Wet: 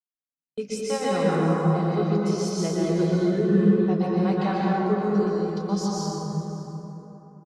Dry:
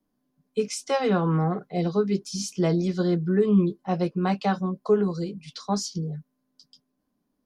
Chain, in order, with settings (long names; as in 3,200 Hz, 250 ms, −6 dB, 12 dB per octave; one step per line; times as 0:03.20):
noise gate −38 dBFS, range −37 dB
single-tap delay 571 ms −17.5 dB
dense smooth reverb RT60 3.4 s, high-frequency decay 0.45×, pre-delay 110 ms, DRR −6.5 dB
level −6 dB